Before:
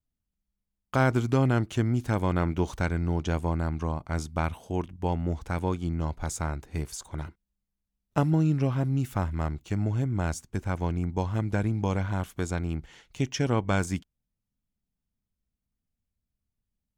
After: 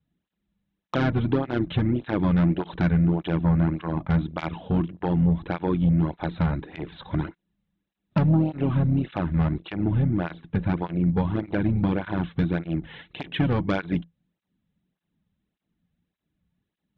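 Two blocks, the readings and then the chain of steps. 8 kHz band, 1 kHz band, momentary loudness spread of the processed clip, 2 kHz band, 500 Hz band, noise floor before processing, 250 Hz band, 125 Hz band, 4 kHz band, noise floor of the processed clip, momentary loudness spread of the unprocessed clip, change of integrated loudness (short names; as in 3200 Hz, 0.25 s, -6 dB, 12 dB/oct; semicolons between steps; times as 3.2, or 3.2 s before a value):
under -20 dB, 0.0 dB, 9 LU, +0.5 dB, +1.5 dB, -85 dBFS, +6.0 dB, +3.5 dB, +2.5 dB, -84 dBFS, 9 LU, +4.0 dB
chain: octaver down 2 oct, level -3 dB; Chebyshev low-pass 4000 Hz, order 10; bell 170 Hz +11.5 dB 0.23 oct; compressor 2.5:1, threshold -31 dBFS, peak gain reduction 11 dB; small resonant body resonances 320/1700 Hz, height 7 dB; added harmonics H 5 -10 dB, 7 -24 dB, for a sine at -16 dBFS; tape flanging out of phase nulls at 1.7 Hz, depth 3.3 ms; gain +6 dB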